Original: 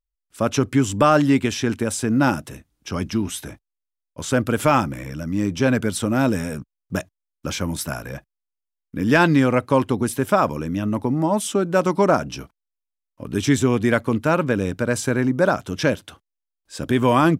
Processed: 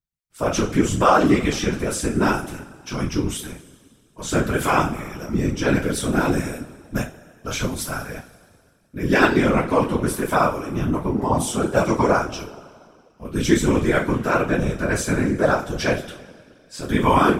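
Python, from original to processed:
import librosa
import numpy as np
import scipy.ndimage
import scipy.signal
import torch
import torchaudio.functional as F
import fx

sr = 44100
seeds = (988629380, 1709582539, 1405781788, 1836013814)

y = fx.rev_double_slope(x, sr, seeds[0], early_s=0.29, late_s=2.1, knee_db=-22, drr_db=-7.0)
y = fx.whisperise(y, sr, seeds[1])
y = F.gain(torch.from_numpy(y), -7.0).numpy()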